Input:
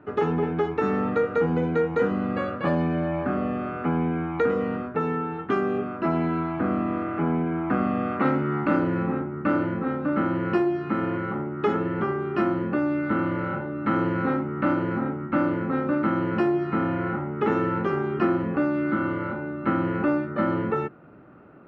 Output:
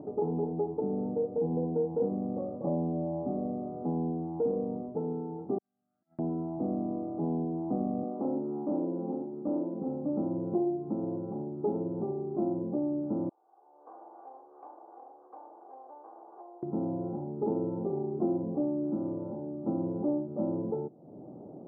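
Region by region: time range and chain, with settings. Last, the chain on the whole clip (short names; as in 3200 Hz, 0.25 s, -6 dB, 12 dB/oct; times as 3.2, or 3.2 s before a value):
0.8–1.52 median filter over 25 samples + running mean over 12 samples
5.58–6.19 elliptic high-pass 2000 Hz, stop band 50 dB + negative-ratio compressor -50 dBFS, ratio -0.5
8.03–9.81 HPF 200 Hz 24 dB/oct + overloaded stage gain 18.5 dB
13.29–16.63 minimum comb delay 2.6 ms + HPF 840 Hz + differentiator
whole clip: steep low-pass 830 Hz 48 dB/oct; upward compressor, threshold -28 dBFS; HPF 130 Hz 12 dB/oct; gain -6 dB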